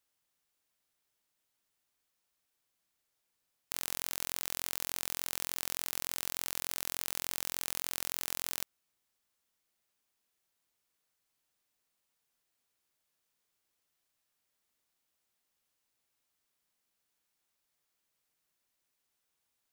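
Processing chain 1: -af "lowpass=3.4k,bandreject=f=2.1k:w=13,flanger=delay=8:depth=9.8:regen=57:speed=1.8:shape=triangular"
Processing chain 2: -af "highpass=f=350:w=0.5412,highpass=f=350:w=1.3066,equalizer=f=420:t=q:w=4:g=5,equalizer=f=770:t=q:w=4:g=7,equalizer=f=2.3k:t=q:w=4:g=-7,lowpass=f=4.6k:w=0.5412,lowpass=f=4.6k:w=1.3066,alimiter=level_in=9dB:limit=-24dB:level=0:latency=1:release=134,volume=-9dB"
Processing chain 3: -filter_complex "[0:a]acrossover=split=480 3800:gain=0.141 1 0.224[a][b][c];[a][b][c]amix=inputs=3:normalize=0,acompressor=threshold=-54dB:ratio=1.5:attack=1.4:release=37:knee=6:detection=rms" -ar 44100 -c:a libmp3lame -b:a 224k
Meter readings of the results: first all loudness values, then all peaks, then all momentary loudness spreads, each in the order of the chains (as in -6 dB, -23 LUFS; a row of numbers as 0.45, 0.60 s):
-49.0, -53.5, -51.5 LUFS; -25.5, -33.0, -32.0 dBFS; 1, 1, 1 LU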